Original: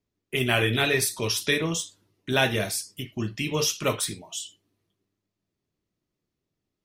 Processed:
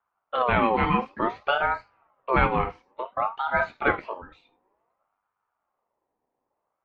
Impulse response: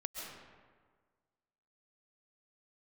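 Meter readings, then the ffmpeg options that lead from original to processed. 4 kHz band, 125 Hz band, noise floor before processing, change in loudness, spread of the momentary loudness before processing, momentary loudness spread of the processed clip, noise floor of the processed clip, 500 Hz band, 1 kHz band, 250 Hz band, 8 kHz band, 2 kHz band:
−12.0 dB, −4.5 dB, −84 dBFS, +0.5 dB, 13 LU, 12 LU, −82 dBFS, 0.0 dB, +10.5 dB, −0.5 dB, below −40 dB, −0.5 dB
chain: -af "lowpass=frequency=1600:width=0.5412,lowpass=frequency=1600:width=1.3066,aeval=exprs='val(0)*sin(2*PI*860*n/s+860*0.3/0.56*sin(2*PI*0.56*n/s))':channel_layout=same,volume=6dB"

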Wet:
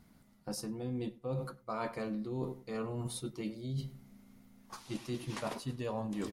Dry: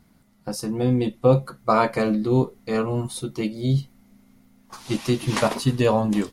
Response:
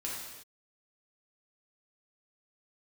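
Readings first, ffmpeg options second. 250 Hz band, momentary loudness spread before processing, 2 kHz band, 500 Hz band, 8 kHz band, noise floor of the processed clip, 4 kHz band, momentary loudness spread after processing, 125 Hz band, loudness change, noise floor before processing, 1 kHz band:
−15.5 dB, 10 LU, −16.5 dB, −17.5 dB, −11.5 dB, −64 dBFS, −14.0 dB, 8 LU, −16.0 dB, −16.5 dB, −59 dBFS, −17.5 dB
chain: -filter_complex "[0:a]asplit=2[link_01][link_02];[link_02]adelay=99,lowpass=frequency=2700:poles=1,volume=-18dB,asplit=2[link_03][link_04];[link_04]adelay=99,lowpass=frequency=2700:poles=1,volume=0.31,asplit=2[link_05][link_06];[link_06]adelay=99,lowpass=frequency=2700:poles=1,volume=0.31[link_07];[link_01][link_03][link_05][link_07]amix=inputs=4:normalize=0,areverse,acompressor=threshold=-31dB:ratio=6,areverse,volume=-4.5dB"

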